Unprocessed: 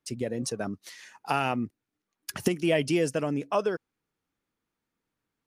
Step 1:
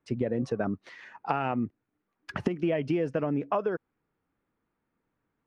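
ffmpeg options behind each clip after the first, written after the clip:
-af "lowpass=1.8k,acompressor=threshold=-29dB:ratio=12,volume=5.5dB"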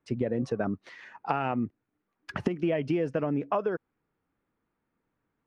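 -af anull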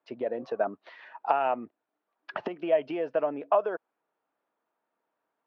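-af "highpass=450,equalizer=f=650:t=q:w=4:g=9,equalizer=f=930:t=q:w=4:g=4,equalizer=f=2.1k:t=q:w=4:g=-4,lowpass=f=4.1k:w=0.5412,lowpass=f=4.1k:w=1.3066"

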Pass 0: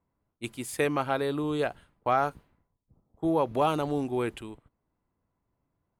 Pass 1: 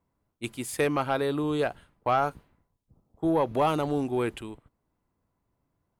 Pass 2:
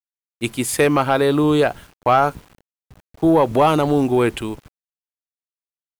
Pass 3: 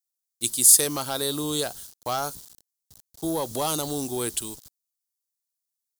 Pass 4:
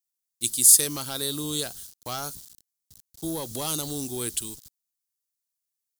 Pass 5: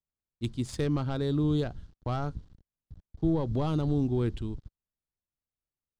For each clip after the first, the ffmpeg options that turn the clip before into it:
-af "asoftclip=type=tanh:threshold=-15.5dB,volume=2dB"
-filter_complex "[0:a]asplit=2[a][b];[b]alimiter=limit=-23.5dB:level=0:latency=1:release=188,volume=2dB[c];[a][c]amix=inputs=2:normalize=0,acrusher=bits=8:mix=0:aa=0.000001,volume=6dB"
-af "aexciter=amount=14.7:drive=4:freq=3.7k,volume=-13.5dB"
-af "equalizer=f=740:t=o:w=2:g=-8.5"
-af "aemphasis=mode=reproduction:type=riaa,adynamicsmooth=sensitivity=1.5:basefreq=2.1k"

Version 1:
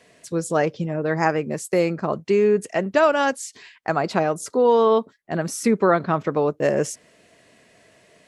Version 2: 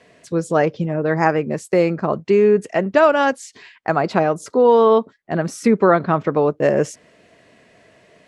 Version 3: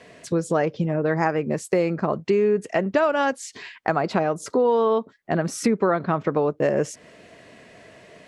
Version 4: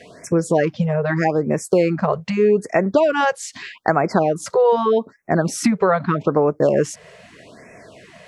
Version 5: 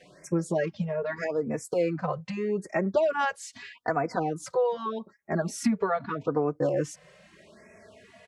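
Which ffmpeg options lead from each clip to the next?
-af "aemphasis=mode=reproduction:type=50kf,volume=4dB"
-af "acompressor=threshold=-26dB:ratio=2.5,volume=4dB"
-af "afftfilt=real='re*(1-between(b*sr/1024,250*pow(3800/250,0.5+0.5*sin(2*PI*0.81*pts/sr))/1.41,250*pow(3800/250,0.5+0.5*sin(2*PI*0.81*pts/sr))*1.41))':imag='im*(1-between(b*sr/1024,250*pow(3800/250,0.5+0.5*sin(2*PI*0.81*pts/sr))/1.41,250*pow(3800/250,0.5+0.5*sin(2*PI*0.81*pts/sr))*1.41))':win_size=1024:overlap=0.75,volume=5dB"
-filter_complex "[0:a]asplit=2[a][b];[b]adelay=3.4,afreqshift=0.43[c];[a][c]amix=inputs=2:normalize=1,volume=-7dB"

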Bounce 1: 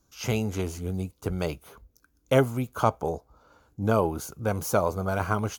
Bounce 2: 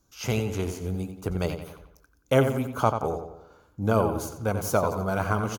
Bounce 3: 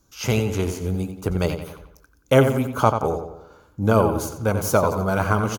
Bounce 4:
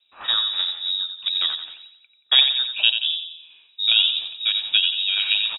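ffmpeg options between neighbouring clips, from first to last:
-filter_complex "[0:a]asplit=2[a][b];[b]adelay=89,lowpass=f=4k:p=1,volume=-7.5dB,asplit=2[c][d];[d]adelay=89,lowpass=f=4k:p=1,volume=0.48,asplit=2[e][f];[f]adelay=89,lowpass=f=4k:p=1,volume=0.48,asplit=2[g][h];[h]adelay=89,lowpass=f=4k:p=1,volume=0.48,asplit=2[i][j];[j]adelay=89,lowpass=f=4k:p=1,volume=0.48,asplit=2[k][l];[l]adelay=89,lowpass=f=4k:p=1,volume=0.48[m];[a][c][e][g][i][k][m]amix=inputs=7:normalize=0"
-af "bandreject=f=710:w=16,volume=5.5dB"
-af "lowpass=f=3.3k:t=q:w=0.5098,lowpass=f=3.3k:t=q:w=0.6013,lowpass=f=3.3k:t=q:w=0.9,lowpass=f=3.3k:t=q:w=2.563,afreqshift=-3900,volume=-1dB"

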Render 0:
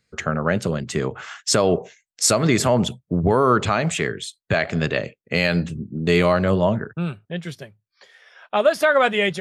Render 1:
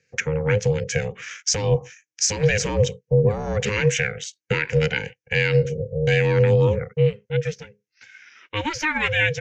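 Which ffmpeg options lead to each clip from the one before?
-af "firequalizer=gain_entry='entry(130,0);entry(180,13);entry(310,-12);entry(810,-6);entry(1200,-26);entry(1900,12);entry(3900,-5);entry(6100,13);entry(9200,-21);entry(13000,-17)':delay=0.05:min_phase=1,alimiter=limit=-7.5dB:level=0:latency=1:release=199,aeval=exprs='val(0)*sin(2*PI*310*n/s)':c=same"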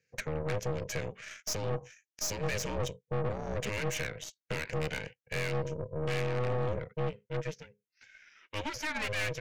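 -af "aeval=exprs='(tanh(14.1*val(0)+0.75)-tanh(0.75))/14.1':c=same,volume=-6dB"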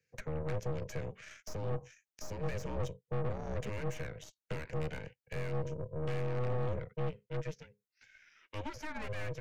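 -filter_complex "[0:a]lowshelf=f=120:g=6,acrossover=split=130|1500[a][b][c];[c]acompressor=threshold=-46dB:ratio=6[d];[a][b][d]amix=inputs=3:normalize=0,volume=-4.5dB"

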